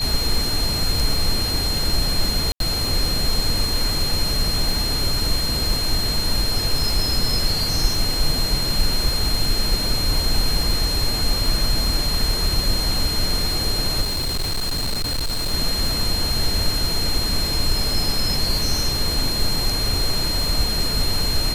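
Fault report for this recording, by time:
surface crackle 64 per second −25 dBFS
whistle 4,200 Hz −23 dBFS
0:02.52–0:02.60: drop-out 82 ms
0:14.01–0:15.54: clipping −19.5 dBFS

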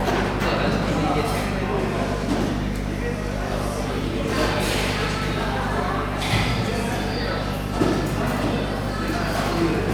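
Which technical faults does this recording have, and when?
mains hum 50 Hz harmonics 5 −28 dBFS

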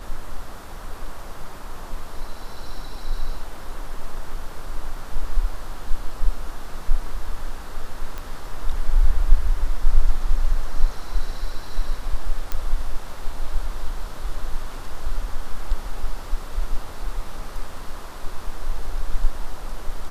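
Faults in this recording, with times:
0:08.18: click −17 dBFS
0:12.52: click −11 dBFS

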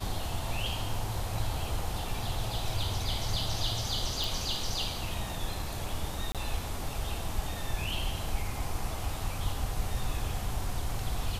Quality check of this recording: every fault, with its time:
0:04.24: click
0:06.32–0:06.35: drop-out 27 ms

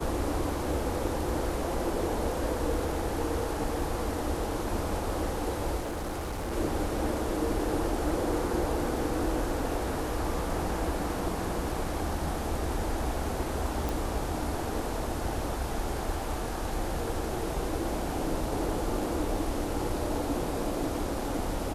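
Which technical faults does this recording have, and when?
0:05.80–0:06.53: clipping −30.5 dBFS
0:13.89: click

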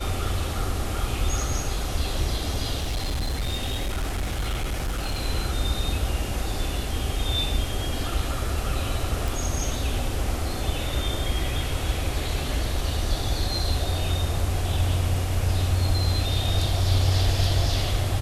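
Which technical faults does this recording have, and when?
0:02.78–0:05.19: clipping −23 dBFS
0:09.28: click

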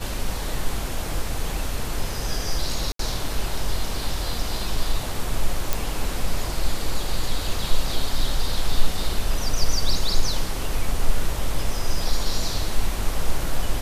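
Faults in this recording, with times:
0:02.92–0:02.99: drop-out 73 ms
0:05.73: click

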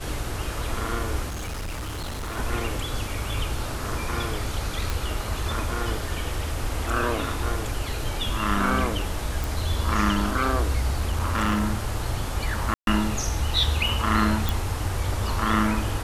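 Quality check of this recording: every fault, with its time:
0:01.28–0:02.38: clipping −28.5 dBFS
0:04.90: click
0:09.44: click
0:10.97–0:11.64: clipping −18.5 dBFS
0:12.74–0:12.87: drop-out 132 ms
0:14.49: click

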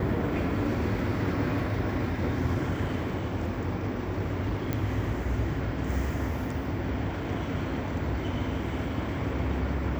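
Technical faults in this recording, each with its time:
0:04.73: click −16 dBFS

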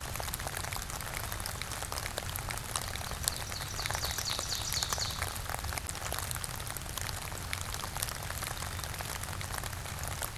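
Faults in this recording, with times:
surface crackle 82 per second −42 dBFS
0:05.87–0:05.88: drop-out 9.8 ms

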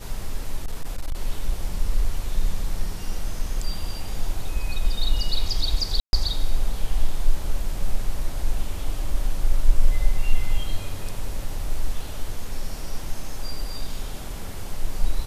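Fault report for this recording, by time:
0:00.57–0:01.15: clipping −21 dBFS
0:06.00–0:06.13: drop-out 131 ms

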